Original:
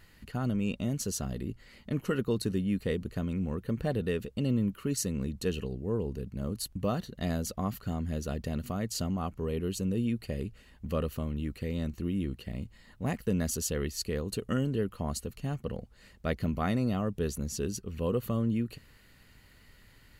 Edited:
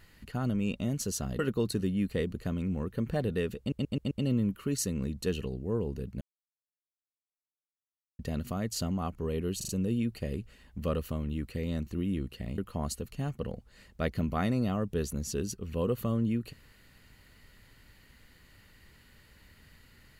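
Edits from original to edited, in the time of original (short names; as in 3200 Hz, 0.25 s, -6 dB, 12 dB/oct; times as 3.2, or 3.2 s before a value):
1.39–2.1 cut
4.3 stutter 0.13 s, 5 plays
6.4–8.38 mute
9.76 stutter 0.04 s, 4 plays
12.65–14.83 cut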